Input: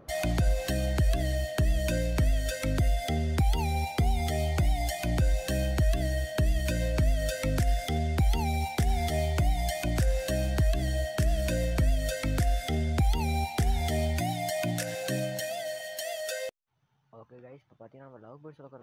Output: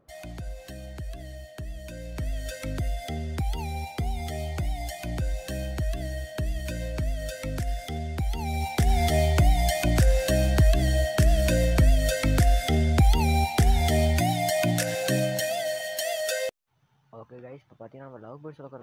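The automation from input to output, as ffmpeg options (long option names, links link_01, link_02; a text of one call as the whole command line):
ffmpeg -i in.wav -af "volume=6dB,afade=type=in:start_time=1.95:duration=0.51:silence=0.398107,afade=type=in:start_time=8.37:duration=0.67:silence=0.334965" out.wav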